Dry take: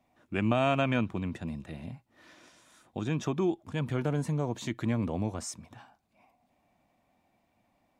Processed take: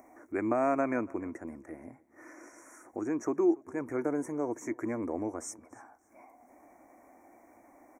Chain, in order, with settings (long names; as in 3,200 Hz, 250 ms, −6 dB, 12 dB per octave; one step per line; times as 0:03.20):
Chebyshev band-stop filter 2,200–5,700 Hz, order 4
upward compression, threshold −43 dBFS
low shelf with overshoot 230 Hz −10 dB, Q 3
repeating echo 286 ms, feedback 29%, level −24 dB
level −1.5 dB